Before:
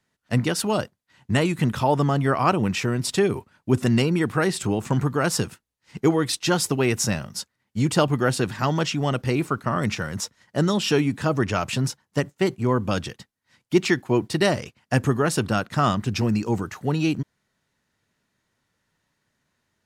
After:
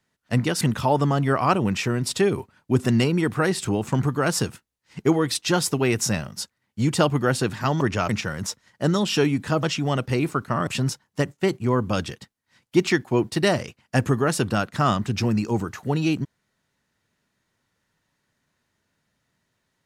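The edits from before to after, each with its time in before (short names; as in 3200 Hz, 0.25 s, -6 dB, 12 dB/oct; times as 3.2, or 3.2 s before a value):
0.61–1.59 cut
8.79–9.83 swap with 11.37–11.65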